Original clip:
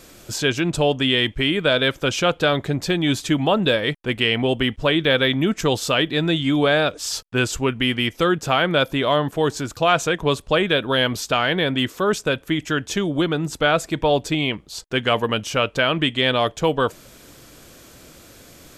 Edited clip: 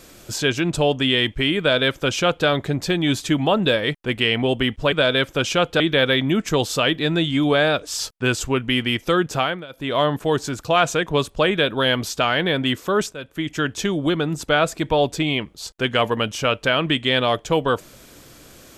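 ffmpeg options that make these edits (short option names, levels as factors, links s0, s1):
-filter_complex "[0:a]asplit=6[s0][s1][s2][s3][s4][s5];[s0]atrim=end=4.922[s6];[s1]atrim=start=1.588:end=2.472[s7];[s2]atrim=start=4.918:end=8.78,asetpts=PTS-STARTPTS,afade=t=out:st=3.552:d=0.31:silence=0.0794328[s8];[s3]atrim=start=8.78:end=8.81,asetpts=PTS-STARTPTS,volume=0.0794[s9];[s4]atrim=start=8.81:end=12.25,asetpts=PTS-STARTPTS,afade=t=in:d=0.31:silence=0.0794328,afade=t=out:st=3.436:d=0.004:c=hsin:silence=0.141254[s10];[s5]atrim=start=12.25,asetpts=PTS-STARTPTS,afade=t=in:d=0.47:silence=0.141254[s11];[s6][s7]acrossfade=d=0.004:c1=hsin:c2=hsin[s12];[s8][s9][s10][s11]concat=n=4:v=0:a=1[s13];[s12][s13]acrossfade=d=0.004:c1=hsin:c2=hsin"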